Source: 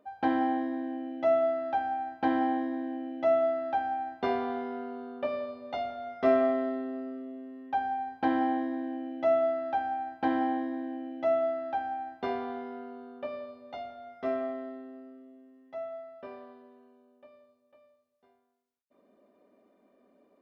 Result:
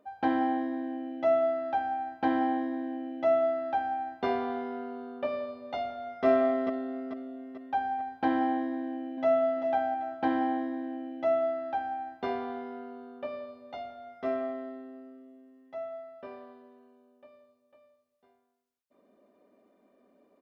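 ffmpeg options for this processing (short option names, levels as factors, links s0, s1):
-filter_complex "[0:a]asplit=2[s0][s1];[s1]afade=t=in:st=5.84:d=0.01,afade=t=out:st=6.25:d=0.01,aecho=0:1:440|880|1320|1760|2200|2640:0.473151|0.236576|0.118288|0.0591439|0.029572|0.014786[s2];[s0][s2]amix=inputs=2:normalize=0,asplit=2[s3][s4];[s4]afade=t=in:st=8.78:d=0.01,afade=t=out:st=9.55:d=0.01,aecho=0:1:390|780|1170|1560:0.398107|0.119432|0.0358296|0.0107489[s5];[s3][s5]amix=inputs=2:normalize=0"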